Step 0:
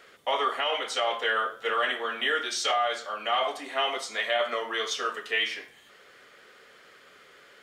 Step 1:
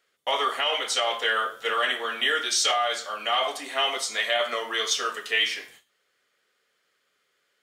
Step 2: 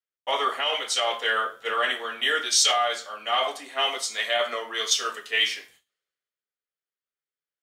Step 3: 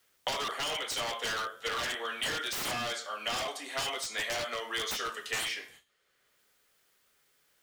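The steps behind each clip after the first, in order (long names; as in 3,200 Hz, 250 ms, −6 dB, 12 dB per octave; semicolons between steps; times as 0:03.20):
noise gate with hold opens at −41 dBFS; high-shelf EQ 3,500 Hz +11 dB
multiband upward and downward expander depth 70%
wave folding −23 dBFS; multiband upward and downward compressor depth 100%; level −5.5 dB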